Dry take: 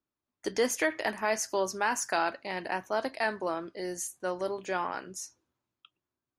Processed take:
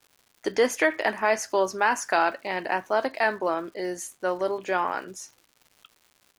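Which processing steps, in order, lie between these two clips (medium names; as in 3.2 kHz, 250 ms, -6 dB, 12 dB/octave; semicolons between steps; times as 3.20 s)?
tone controls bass -6 dB, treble -8 dB; crackle 250 per s -51 dBFS; trim +6.5 dB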